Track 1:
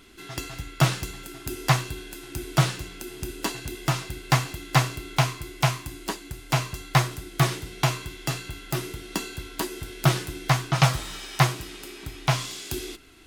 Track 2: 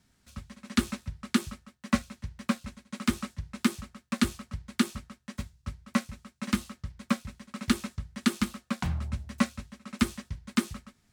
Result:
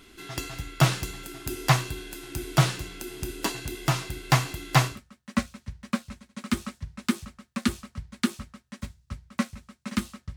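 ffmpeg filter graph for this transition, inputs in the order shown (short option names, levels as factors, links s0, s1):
-filter_complex "[0:a]apad=whole_dur=10.36,atrim=end=10.36,atrim=end=5.01,asetpts=PTS-STARTPTS[s0];[1:a]atrim=start=1.41:end=6.92,asetpts=PTS-STARTPTS[s1];[s0][s1]acrossfade=d=0.16:c1=tri:c2=tri"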